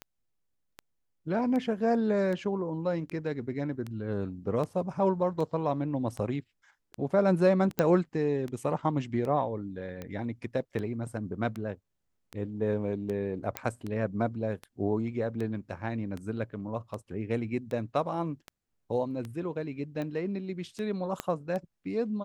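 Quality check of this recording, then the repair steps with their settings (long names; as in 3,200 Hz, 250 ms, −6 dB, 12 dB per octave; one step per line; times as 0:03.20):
scratch tick 78 rpm −24 dBFS
0:07.79: click −12 dBFS
0:13.57: click −14 dBFS
0:21.20: click −16 dBFS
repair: click removal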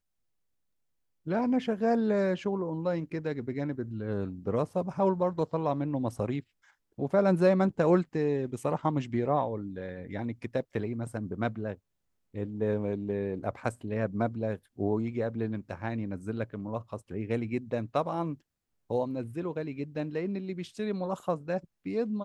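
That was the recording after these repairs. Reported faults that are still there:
0:21.20: click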